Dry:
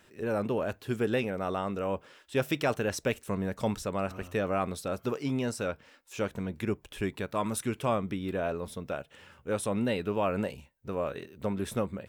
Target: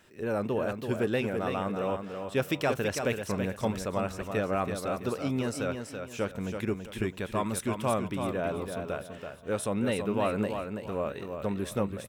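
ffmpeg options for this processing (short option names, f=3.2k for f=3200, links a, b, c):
-af "aecho=1:1:331|662|993|1324:0.473|0.151|0.0485|0.0155"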